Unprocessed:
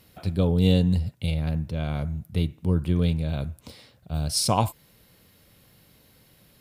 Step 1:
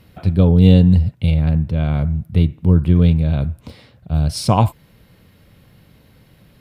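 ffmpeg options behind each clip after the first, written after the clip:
ffmpeg -i in.wav -af "bass=frequency=250:gain=5,treble=frequency=4000:gain=-10,volume=6dB" out.wav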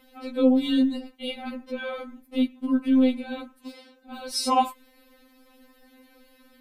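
ffmpeg -i in.wav -af "afftfilt=real='re*3.46*eq(mod(b,12),0)':imag='im*3.46*eq(mod(b,12),0)':win_size=2048:overlap=0.75" out.wav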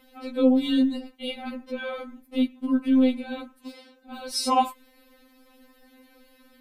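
ffmpeg -i in.wav -af anull out.wav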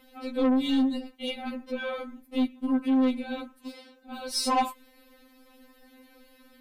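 ffmpeg -i in.wav -af "aeval=exprs='0.376*(cos(1*acos(clip(val(0)/0.376,-1,1)))-cos(1*PI/2))+0.0376*(cos(4*acos(clip(val(0)/0.376,-1,1)))-cos(4*PI/2))':channel_layout=same,asoftclip=type=tanh:threshold=-18dB" out.wav

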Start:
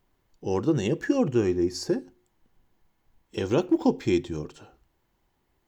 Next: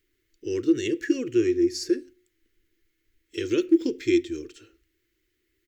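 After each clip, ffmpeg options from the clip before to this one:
ffmpeg -i in.wav -af "firequalizer=gain_entry='entry(110,0);entry(160,-17);entry(330,11);entry(790,-26);entry(1300,-1);entry(2000,11);entry(2900,8)':delay=0.05:min_phase=1,volume=-6dB" out.wav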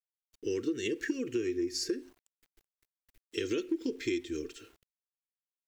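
ffmpeg -i in.wav -af "aecho=1:1:4.4:0.4,acompressor=threshold=-29dB:ratio=6,aeval=exprs='val(0)*gte(abs(val(0)),0.00106)':channel_layout=same" out.wav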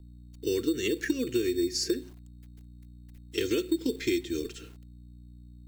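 ffmpeg -i in.wav -filter_complex "[0:a]aeval=exprs='val(0)+0.00251*(sin(2*PI*60*n/s)+sin(2*PI*2*60*n/s)/2+sin(2*PI*3*60*n/s)/3+sin(2*PI*4*60*n/s)/4+sin(2*PI*5*60*n/s)/5)':channel_layout=same,acrossover=split=220|1300|1600[link_01][link_02][link_03][link_04];[link_02]acrusher=samples=11:mix=1:aa=0.000001[link_05];[link_01][link_05][link_03][link_04]amix=inputs=4:normalize=0,volume=4.5dB" out.wav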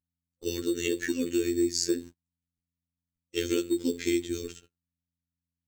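ffmpeg -i in.wav -af "agate=range=-38dB:threshold=-41dB:ratio=16:detection=peak,superequalizer=8b=0.631:15b=1.78,afftfilt=real='hypot(re,im)*cos(PI*b)':imag='0':win_size=2048:overlap=0.75,volume=3dB" out.wav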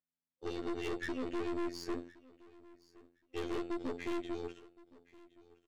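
ffmpeg -i in.wav -af "highpass=310,lowpass=2400,aeval=exprs='(tanh(63.1*val(0)+0.65)-tanh(0.65))/63.1':channel_layout=same,aecho=1:1:1068|2136:0.0794|0.0135,volume=1.5dB" out.wav

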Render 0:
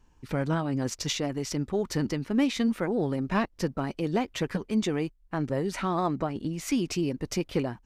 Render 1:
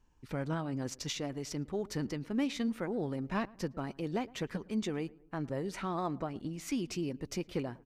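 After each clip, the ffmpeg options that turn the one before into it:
ffmpeg -i in.wav -filter_complex "[0:a]asplit=2[link_01][link_02];[link_02]adelay=111,lowpass=frequency=1400:poles=1,volume=-22dB,asplit=2[link_03][link_04];[link_04]adelay=111,lowpass=frequency=1400:poles=1,volume=0.5,asplit=2[link_05][link_06];[link_06]adelay=111,lowpass=frequency=1400:poles=1,volume=0.5[link_07];[link_01][link_03][link_05][link_07]amix=inputs=4:normalize=0,volume=-7.5dB" out.wav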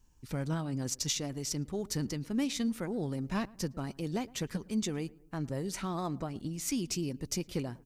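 ffmpeg -i in.wav -af "bass=frequency=250:gain=6,treble=frequency=4000:gain=13,volume=-2dB" out.wav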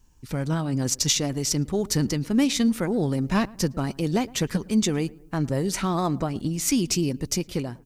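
ffmpeg -i in.wav -af "dynaudnorm=framelen=100:gausssize=13:maxgain=4dB,volume=6.5dB" out.wav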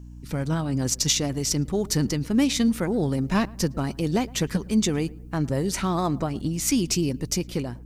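ffmpeg -i in.wav -af "aeval=exprs='val(0)+0.01*(sin(2*PI*60*n/s)+sin(2*PI*2*60*n/s)/2+sin(2*PI*3*60*n/s)/3+sin(2*PI*4*60*n/s)/4+sin(2*PI*5*60*n/s)/5)':channel_layout=same" out.wav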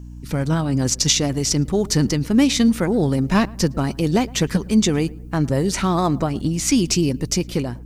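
ffmpeg -i in.wav -filter_complex "[0:a]acrossover=split=8900[link_01][link_02];[link_02]acompressor=threshold=-43dB:ratio=4:attack=1:release=60[link_03];[link_01][link_03]amix=inputs=2:normalize=0,volume=5.5dB" out.wav

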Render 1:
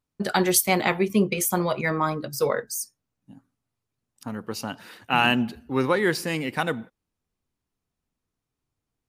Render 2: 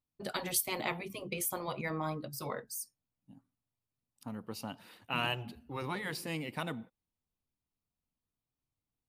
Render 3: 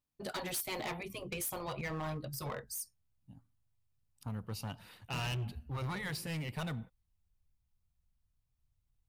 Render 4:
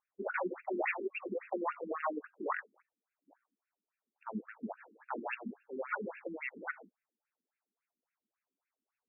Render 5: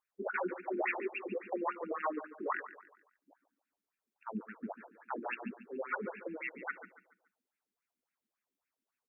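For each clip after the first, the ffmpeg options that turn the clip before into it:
ffmpeg -i in.wav -af "equalizer=frequency=400:width_type=o:width=0.67:gain=-4,equalizer=frequency=1600:width_type=o:width=0.67:gain=-7,equalizer=frequency=6300:width_type=o:width=0.67:gain=-6,afftfilt=real='re*lt(hypot(re,im),0.355)':imag='im*lt(hypot(re,im),0.355)':win_size=1024:overlap=0.75,volume=-8dB" out.wav
ffmpeg -i in.wav -af "asubboost=boost=10.5:cutoff=89,asoftclip=type=hard:threshold=-34dB" out.wav
ffmpeg -i in.wav -af "afftfilt=real='re*between(b*sr/1024,280*pow(2000/280,0.5+0.5*sin(2*PI*3.6*pts/sr))/1.41,280*pow(2000/280,0.5+0.5*sin(2*PI*3.6*pts/sr))*1.41)':imag='im*between(b*sr/1024,280*pow(2000/280,0.5+0.5*sin(2*PI*3.6*pts/sr))/1.41,280*pow(2000/280,0.5+0.5*sin(2*PI*3.6*pts/sr))*1.41)':win_size=1024:overlap=0.75,volume=10.5dB" out.wav
ffmpeg -i in.wav -af "aecho=1:1:142|284|426|568:0.2|0.0778|0.0303|0.0118" out.wav

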